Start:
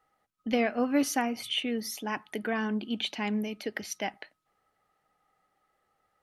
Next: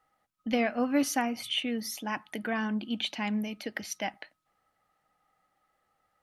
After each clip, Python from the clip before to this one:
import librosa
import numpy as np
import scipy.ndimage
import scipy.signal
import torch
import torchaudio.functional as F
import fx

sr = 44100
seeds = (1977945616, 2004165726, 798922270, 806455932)

y = fx.peak_eq(x, sr, hz=410.0, db=-10.0, octaves=0.22)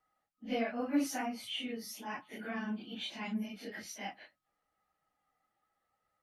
y = fx.phase_scramble(x, sr, seeds[0], window_ms=100)
y = y * librosa.db_to_amplitude(-7.5)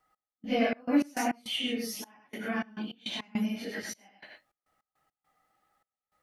y = x + 10.0 ** (-3.5 / 20.0) * np.pad(x, (int(101 * sr / 1000.0), 0))[:len(x)]
y = fx.step_gate(y, sr, bpm=103, pattern='x..xx.x.x.xxx', floor_db=-24.0, edge_ms=4.5)
y = y * librosa.db_to_amplitude(6.0)